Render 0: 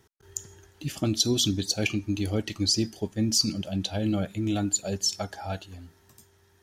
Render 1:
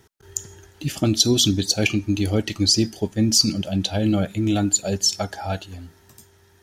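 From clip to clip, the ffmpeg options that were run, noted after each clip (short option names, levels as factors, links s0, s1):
-af "bandreject=f=1100:w=20,volume=2.11"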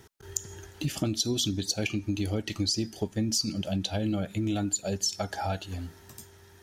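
-af "acompressor=threshold=0.0355:ratio=4,volume=1.19"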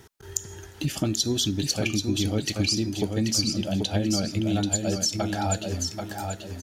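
-af "aecho=1:1:785|1570|2355|3140:0.562|0.191|0.065|0.0221,volume=1.41"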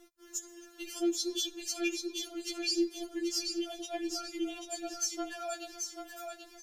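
-af "afftfilt=real='re*4*eq(mod(b,16),0)':imag='im*4*eq(mod(b,16),0)':win_size=2048:overlap=0.75,volume=0.531"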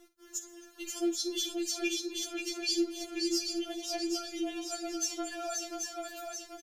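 -af "aecho=1:1:54|532:0.2|0.596"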